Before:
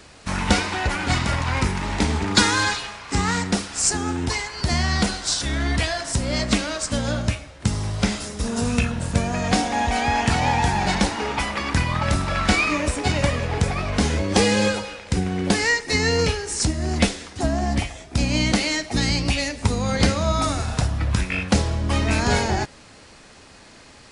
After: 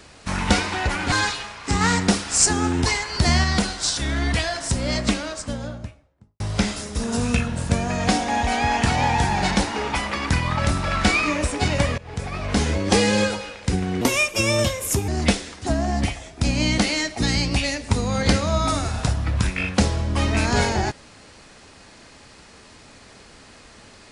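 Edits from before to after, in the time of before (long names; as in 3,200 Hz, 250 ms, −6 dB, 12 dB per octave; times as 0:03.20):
0:01.12–0:02.56: remove
0:03.25–0:04.88: clip gain +3.5 dB
0:06.28–0:07.84: fade out and dull
0:13.42–0:14.03: fade in, from −22.5 dB
0:15.45–0:16.82: play speed 128%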